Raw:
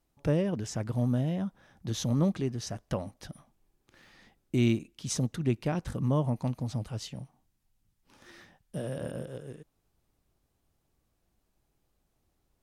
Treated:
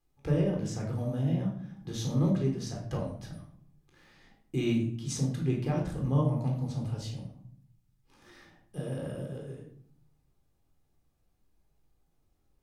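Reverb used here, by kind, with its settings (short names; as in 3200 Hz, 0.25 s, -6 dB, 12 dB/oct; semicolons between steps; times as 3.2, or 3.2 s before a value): shoebox room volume 970 m³, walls furnished, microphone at 3.9 m; gain -7 dB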